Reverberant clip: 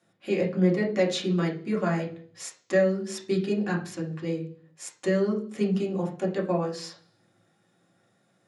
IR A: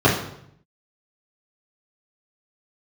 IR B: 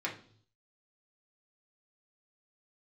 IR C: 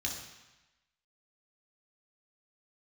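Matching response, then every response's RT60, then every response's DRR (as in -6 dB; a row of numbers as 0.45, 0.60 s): B; 0.70 s, not exponential, 1.0 s; -8.0, -3.0, -1.0 dB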